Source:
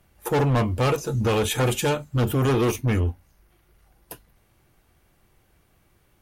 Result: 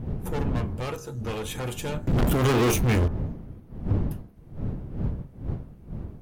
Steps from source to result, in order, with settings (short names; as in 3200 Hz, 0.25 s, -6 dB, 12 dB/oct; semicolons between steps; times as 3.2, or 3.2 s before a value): one diode to ground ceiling -19.5 dBFS; wind noise 150 Hz -21 dBFS; 2.07–3.08 sample leveller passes 5; compressor 10:1, threshold -11 dBFS, peak gain reduction 8 dB; de-hum 67.45 Hz, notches 26; gain -8 dB